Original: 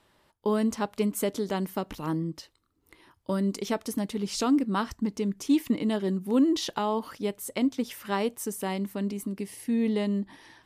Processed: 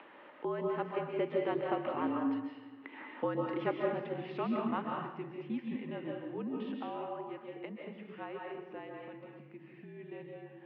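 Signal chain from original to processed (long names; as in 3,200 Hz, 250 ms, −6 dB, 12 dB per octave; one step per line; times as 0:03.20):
source passing by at 0:02.66, 12 m/s, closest 11 metres
comb and all-pass reverb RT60 0.95 s, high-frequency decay 0.75×, pre-delay 105 ms, DRR −0.5 dB
upward compression, threshold −36 dBFS
single-sideband voice off tune −52 Hz 310–2,800 Hz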